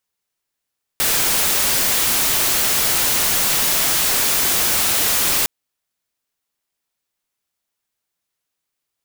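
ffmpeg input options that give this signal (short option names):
-f lavfi -i "anoisesrc=c=white:a=0.231:d=4.46:r=44100:seed=1"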